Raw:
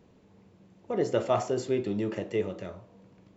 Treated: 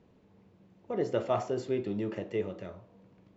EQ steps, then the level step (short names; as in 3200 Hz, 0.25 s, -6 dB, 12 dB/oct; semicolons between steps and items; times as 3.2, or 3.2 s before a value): air absorption 86 m; -3.0 dB